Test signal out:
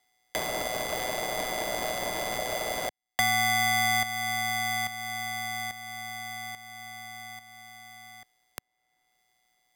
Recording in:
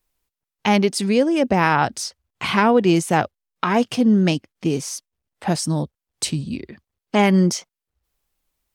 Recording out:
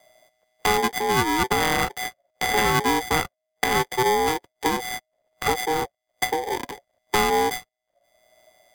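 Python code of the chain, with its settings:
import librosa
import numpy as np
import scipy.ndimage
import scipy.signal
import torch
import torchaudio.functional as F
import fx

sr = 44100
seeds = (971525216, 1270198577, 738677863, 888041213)

y = np.r_[np.sort(x[:len(x) // 32 * 32].reshape(-1, 32), axis=1).ravel(), x[len(x) // 32 * 32:]]
y = y * np.sin(2.0 * np.pi * 630.0 * np.arange(len(y)) / sr)
y = fx.band_squash(y, sr, depth_pct=70)
y = F.gain(torch.from_numpy(y), -1.5).numpy()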